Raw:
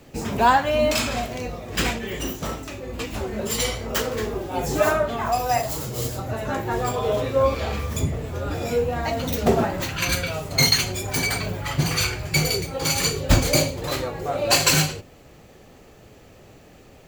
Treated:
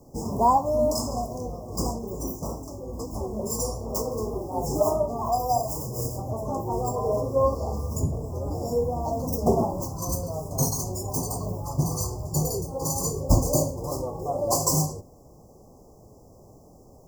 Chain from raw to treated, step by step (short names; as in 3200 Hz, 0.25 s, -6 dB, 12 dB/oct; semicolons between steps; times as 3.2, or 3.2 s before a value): Chebyshev band-stop 1100–5100 Hz, order 5; bell 6400 Hz -2 dB 0.71 oct; gain -1.5 dB; MP3 192 kbps 44100 Hz